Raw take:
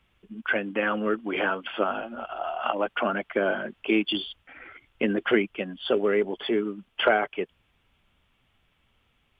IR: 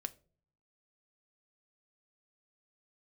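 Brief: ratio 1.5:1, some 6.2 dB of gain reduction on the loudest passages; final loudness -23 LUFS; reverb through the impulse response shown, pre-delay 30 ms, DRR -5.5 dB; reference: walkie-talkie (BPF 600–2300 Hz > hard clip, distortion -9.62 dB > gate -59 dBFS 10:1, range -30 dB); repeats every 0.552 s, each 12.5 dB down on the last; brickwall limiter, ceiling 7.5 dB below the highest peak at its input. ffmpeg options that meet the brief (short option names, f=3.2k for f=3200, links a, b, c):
-filter_complex "[0:a]acompressor=threshold=-33dB:ratio=1.5,alimiter=limit=-20.5dB:level=0:latency=1,aecho=1:1:552|1104|1656:0.237|0.0569|0.0137,asplit=2[a][b];[1:a]atrim=start_sample=2205,adelay=30[c];[b][c]afir=irnorm=-1:irlink=0,volume=7.5dB[d];[a][d]amix=inputs=2:normalize=0,highpass=600,lowpass=2.3k,asoftclip=type=hard:threshold=-27dB,agate=range=-30dB:threshold=-59dB:ratio=10,volume=9.5dB"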